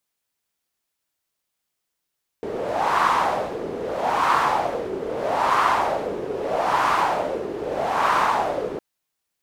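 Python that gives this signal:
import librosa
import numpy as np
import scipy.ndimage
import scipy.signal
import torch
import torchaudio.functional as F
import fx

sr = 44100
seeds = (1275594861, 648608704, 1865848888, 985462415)

y = fx.wind(sr, seeds[0], length_s=6.36, low_hz=410.0, high_hz=1100.0, q=3.6, gusts=5, swing_db=10)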